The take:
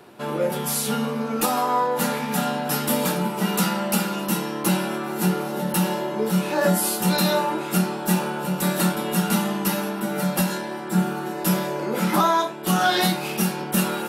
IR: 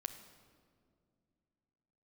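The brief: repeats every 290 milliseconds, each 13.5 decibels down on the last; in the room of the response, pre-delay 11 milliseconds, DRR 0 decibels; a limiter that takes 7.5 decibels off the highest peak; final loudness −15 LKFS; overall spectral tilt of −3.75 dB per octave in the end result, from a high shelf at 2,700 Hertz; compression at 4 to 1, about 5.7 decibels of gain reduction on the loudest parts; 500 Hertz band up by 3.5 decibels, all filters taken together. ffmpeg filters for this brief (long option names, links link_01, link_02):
-filter_complex "[0:a]equalizer=frequency=500:width_type=o:gain=4,highshelf=frequency=2700:gain=7.5,acompressor=threshold=-20dB:ratio=4,alimiter=limit=-15.5dB:level=0:latency=1,aecho=1:1:290|580:0.211|0.0444,asplit=2[link_01][link_02];[1:a]atrim=start_sample=2205,adelay=11[link_03];[link_02][link_03]afir=irnorm=-1:irlink=0,volume=2dB[link_04];[link_01][link_04]amix=inputs=2:normalize=0,volume=6.5dB"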